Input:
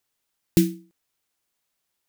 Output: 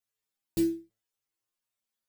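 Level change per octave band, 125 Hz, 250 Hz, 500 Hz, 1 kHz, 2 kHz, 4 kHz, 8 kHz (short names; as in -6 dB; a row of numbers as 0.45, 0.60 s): -17.5 dB, -6.0 dB, -4.0 dB, n/a, under -10 dB, -11.0 dB, -10.5 dB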